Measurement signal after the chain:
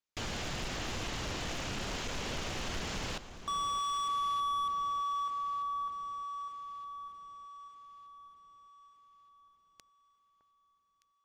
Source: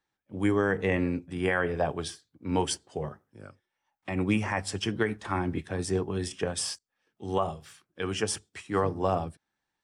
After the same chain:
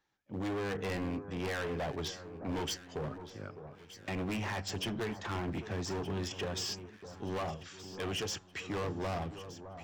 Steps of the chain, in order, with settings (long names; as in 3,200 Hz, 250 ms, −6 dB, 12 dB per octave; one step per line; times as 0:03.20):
dynamic equaliser 2,900 Hz, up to +4 dB, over −51 dBFS, Q 3.3
in parallel at +1.5 dB: downward compressor 10 to 1, threshold −39 dBFS
on the sum: downsampling to 16,000 Hz
gain into a clipping stage and back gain 28.5 dB
delay that swaps between a low-pass and a high-pass 611 ms, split 1,400 Hz, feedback 66%, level −11.5 dB
level −4.5 dB